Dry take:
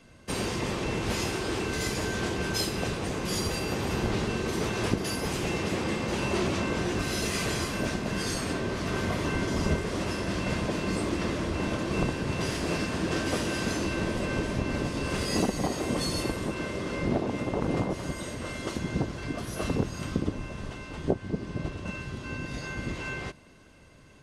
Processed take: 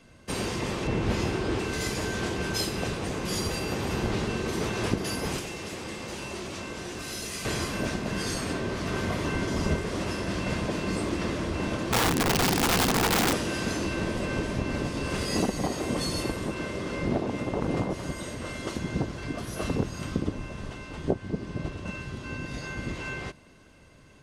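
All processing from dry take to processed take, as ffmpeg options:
ffmpeg -i in.wav -filter_complex "[0:a]asettb=1/sr,asplit=3[link_01][link_02][link_03];[link_01]atrim=end=0.874[link_04];[link_02]atrim=start=0.87:end=1.59,asetpts=PTS-STARTPTS,afade=type=in:duration=0.004:curve=qsin,afade=type=out:start_time=0.716:duration=0.004:curve=qsin,lowpass=frequency=3700:poles=1,lowshelf=frequency=420:gain=5[link_05];[link_03]atrim=start=1.586[link_06];[link_04][link_05]acrossfade=duration=0.004:curve1=hsin:curve2=qsin[link_07];[link_07][link_06]acrossfade=duration=0.004:curve1=qsin:curve2=hsin,asettb=1/sr,asplit=3[link_08][link_09][link_10];[link_08]atrim=end=5.384[link_11];[link_09]atrim=start=5.38:end=7.45,asetpts=PTS-STARTPTS,afade=type=in:duration=0.004:curve=qsin,afade=type=out:start_time=2.066:duration=0.004:curve=qsin,acrossover=split=100|290[link_12][link_13][link_14];[link_12]acompressor=threshold=-49dB:ratio=4[link_15];[link_13]acompressor=threshold=-46dB:ratio=4[link_16];[link_14]acompressor=threshold=-38dB:ratio=4[link_17];[link_15][link_16][link_17]amix=inputs=3:normalize=0,highshelf=frequency=4000:gain=8[link_18];[link_10]atrim=start=7.446[link_19];[link_11][link_18]acrossfade=duration=0.004:curve1=hsin:curve2=qsin[link_20];[link_20][link_19]acrossfade=duration=0.004:curve1=qsin:curve2=hsin,asettb=1/sr,asplit=3[link_21][link_22][link_23];[link_21]atrim=end=11.924[link_24];[link_22]atrim=start=11.92:end=13.33,asetpts=PTS-STARTPTS,afade=type=in:duration=0.004:curve=qsin,afade=type=out:start_time=1.406:duration=0.004:curve=qsin,equalizer=frequency=220:width_type=o:width=1.6:gain=12.5,aeval=exprs='(mod(7.94*val(0)+1,2)-1)/7.94':channel_layout=same,bandreject=frequency=600:width=10[link_25];[link_23]atrim=start=13.326[link_26];[link_24][link_25]acrossfade=duration=0.004:curve1=hsin:curve2=qsin[link_27];[link_27][link_26]acrossfade=duration=0.004:curve1=qsin:curve2=hsin" out.wav

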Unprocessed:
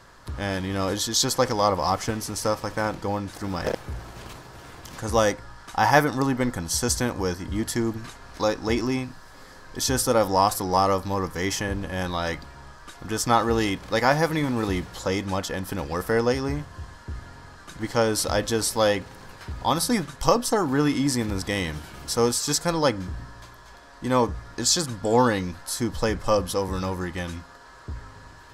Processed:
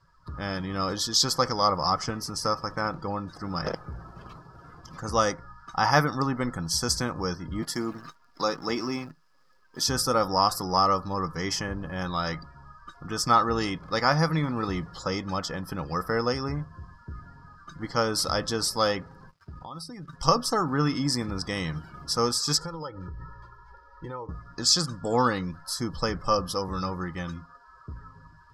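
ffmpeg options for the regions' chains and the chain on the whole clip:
ffmpeg -i in.wav -filter_complex "[0:a]asettb=1/sr,asplit=3[link_01][link_02][link_03];[link_01]atrim=end=7.624[link_04];[link_02]atrim=start=7.62:end=9.87,asetpts=PTS-STARTPTS,afade=type=in:duration=0.004:curve=qsin,afade=type=out:start_time=2.246:duration=0.004:curve=qsin,highpass=170,acrusher=bits=7:dc=4:mix=0:aa=0.000001[link_05];[link_03]atrim=start=9.866[link_06];[link_04][link_05]acrossfade=duration=0.004:curve1=hsin:curve2=qsin[link_07];[link_07][link_06]acrossfade=duration=0.004:curve1=qsin:curve2=hsin,asettb=1/sr,asplit=3[link_08][link_09][link_10];[link_08]atrim=end=19.294[link_11];[link_09]atrim=start=19.29:end=20.13,asetpts=PTS-STARTPTS,afade=type=in:duration=0.004:curve=qsin,afade=type=out:start_time=0.836:duration=0.004:curve=qsin,aeval=exprs='sgn(val(0))*max(abs(val(0))-0.00668,0)':channel_layout=same,acompressor=threshold=-32dB:ratio=20:attack=3.2:release=140:knee=1:detection=peak[link_12];[link_10]atrim=start=20.126[link_13];[link_11][link_12]acrossfade=duration=0.004:curve1=hsin:curve2=qsin[link_14];[link_14][link_13]acrossfade=duration=0.004:curve1=qsin:curve2=hsin,asettb=1/sr,asplit=3[link_15][link_16][link_17];[link_15]atrim=end=22.574[link_18];[link_16]atrim=start=22.57:end=24.29,asetpts=PTS-STARTPTS,afade=type=in:duration=0.004:curve=qsin,afade=type=out:start_time=1.716:duration=0.004:curve=qsin,lowpass=frequency=3600:poles=1,aecho=1:1:2.2:0.71,atrim=end_sample=75852,acompressor=threshold=-29dB:ratio=10:attack=3.2:release=140:knee=1:detection=peak[link_19];[link_17]atrim=start=24.286[link_20];[link_18][link_19]acrossfade=duration=0.004:curve1=hsin:curve2=qsin[link_21];[link_21][link_20]acrossfade=duration=0.004:curve1=qsin:curve2=hsin,afftdn=noise_reduction=18:noise_floor=-42,equalizer=frequency=160:width_type=o:width=0.33:gain=10,equalizer=frequency=1250:width_type=o:width=0.33:gain=11,equalizer=frequency=5000:width_type=o:width=0.33:gain=11,volume=-5.5dB" out.wav

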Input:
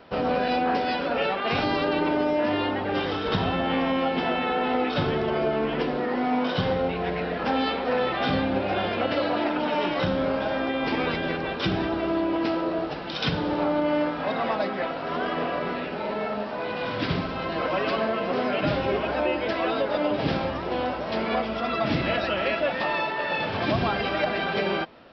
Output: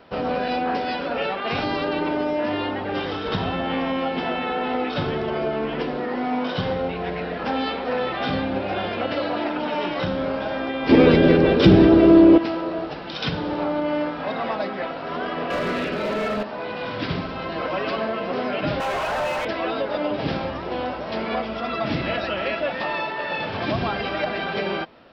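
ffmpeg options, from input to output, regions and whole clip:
ffmpeg -i in.wav -filter_complex "[0:a]asettb=1/sr,asplit=3[link_01][link_02][link_03];[link_01]atrim=end=10.894[link_04];[link_02]atrim=start=10.89:end=12.38,asetpts=PTS-STARTPTS,afade=type=in:duration=0.004:curve=qsin,afade=type=out:start_time=1.486:duration=0.004:curve=qsin,lowshelf=frequency=620:width_type=q:width=1.5:gain=8,acontrast=62[link_05];[link_03]atrim=start=12.376[link_06];[link_04][link_05]acrossfade=duration=0.004:curve1=hsin:curve2=qsin[link_07];[link_07][link_06]acrossfade=duration=0.004:curve1=qsin:curve2=hsin,asettb=1/sr,asplit=3[link_08][link_09][link_10];[link_08]atrim=end=15.504[link_11];[link_09]atrim=start=15.5:end=16.43,asetpts=PTS-STARTPTS,afade=type=in:duration=0.004:curve=qsin,afade=type=out:start_time=0.926:duration=0.004:curve=qsin,equalizer=frequency=850:width=4.3:gain=-11,acontrast=87,asoftclip=type=hard:threshold=-20.5dB[link_12];[link_10]atrim=start=16.426[link_13];[link_11][link_12]acrossfade=duration=0.004:curve1=hsin:curve2=qsin[link_14];[link_14][link_13]acrossfade=duration=0.004:curve1=qsin:curve2=hsin,asettb=1/sr,asplit=3[link_15][link_16][link_17];[link_15]atrim=end=18.804[link_18];[link_16]atrim=start=18.8:end=19.45,asetpts=PTS-STARTPTS,afade=type=in:duration=0.004:curve=qsin,afade=type=out:start_time=0.646:duration=0.004:curve=qsin,highpass=frequency=570:width=0.5412,highpass=frequency=570:width=1.3066,asplit=2[link_19][link_20];[link_20]highpass=frequency=720:poles=1,volume=34dB,asoftclip=type=tanh:threshold=-17dB[link_21];[link_19][link_21]amix=inputs=2:normalize=0,lowpass=frequency=1300:poles=1,volume=-6dB[link_22];[link_17]atrim=start=19.446[link_23];[link_18][link_22]acrossfade=duration=0.004:curve1=hsin:curve2=qsin[link_24];[link_24][link_23]acrossfade=duration=0.004:curve1=qsin:curve2=hsin" out.wav

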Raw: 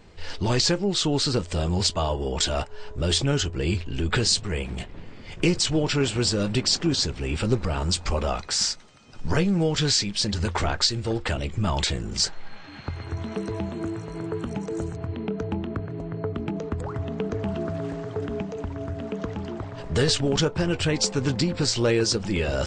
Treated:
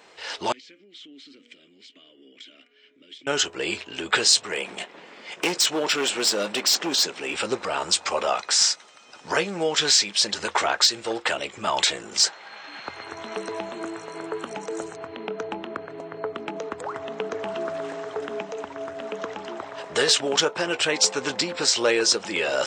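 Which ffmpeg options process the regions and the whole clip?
ffmpeg -i in.wav -filter_complex "[0:a]asettb=1/sr,asplit=3[link_01][link_02][link_03];[link_01]atrim=end=0.524[link_04];[link_02]atrim=start=0.52:end=3.27,asetpts=PTS-STARTPTS,afade=type=in:duration=0.004:curve=qsin,afade=type=out:start_time=2.746:duration=0.004:curve=qsin,bandreject=frequency=239.5:width_type=h:width=4,bandreject=frequency=479:width_type=h:width=4,bandreject=frequency=718.5:width_type=h:width=4,bandreject=frequency=958:width_type=h:width=4,bandreject=frequency=1197.5:width_type=h:width=4,bandreject=frequency=1437:width_type=h:width=4,bandreject=frequency=1676.5:width_type=h:width=4,bandreject=frequency=1916:width_type=h:width=4,bandreject=frequency=2155.5:width_type=h:width=4,bandreject=frequency=2395:width_type=h:width=4,bandreject=frequency=2634.5:width_type=h:width=4,bandreject=frequency=2874:width_type=h:width=4,acompressor=threshold=-30dB:ratio=6:attack=3.2:release=140:knee=1:detection=peak,asplit=3[link_05][link_06][link_07];[link_05]bandpass=frequency=270:width_type=q:width=8,volume=0dB[link_08];[link_06]bandpass=frequency=2290:width_type=q:width=8,volume=-6dB[link_09];[link_07]bandpass=frequency=3010:width_type=q:width=8,volume=-9dB[link_10];[link_08][link_09][link_10]amix=inputs=3:normalize=0[link_11];[link_03]atrim=start=3.266[link_12];[link_04][link_11]acrossfade=duration=0.004:curve1=hsin:curve2=qsin[link_13];[link_13][link_12]acrossfade=duration=0.004:curve1=qsin:curve2=hsin,asettb=1/sr,asplit=3[link_14][link_15][link_16];[link_14]atrim=end=4.514[link_17];[link_15]atrim=start=4.51:end=7.34,asetpts=PTS-STARTPTS,afade=type=in:duration=0.004:curve=qsin,afade=type=out:start_time=2.826:duration=0.004:curve=qsin,asoftclip=type=hard:threshold=-19.5dB,lowshelf=frequency=140:width_type=q:width=1.5:gain=-7[link_18];[link_16]atrim=start=7.336[link_19];[link_17][link_18]acrossfade=duration=0.004:curve1=hsin:curve2=qsin[link_20];[link_20][link_19]acrossfade=duration=0.004:curve1=qsin:curve2=hsin,highpass=560,acontrast=48,bandreject=frequency=4600:width=15" out.wav

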